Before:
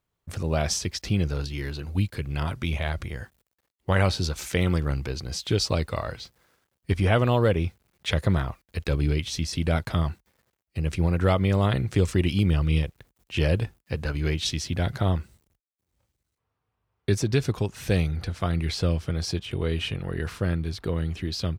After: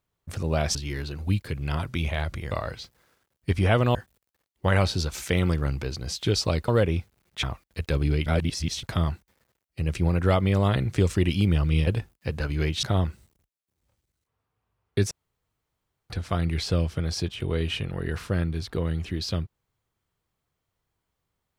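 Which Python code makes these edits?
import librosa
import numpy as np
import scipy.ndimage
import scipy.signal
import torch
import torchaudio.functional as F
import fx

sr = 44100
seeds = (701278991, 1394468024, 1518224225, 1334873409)

y = fx.edit(x, sr, fx.cut(start_s=0.75, length_s=0.68),
    fx.move(start_s=5.92, length_s=1.44, to_s=3.19),
    fx.cut(start_s=8.11, length_s=0.3),
    fx.reverse_span(start_s=9.24, length_s=0.57),
    fx.cut(start_s=12.85, length_s=0.67),
    fx.cut(start_s=14.48, length_s=0.46),
    fx.room_tone_fill(start_s=17.22, length_s=0.99), tone=tone)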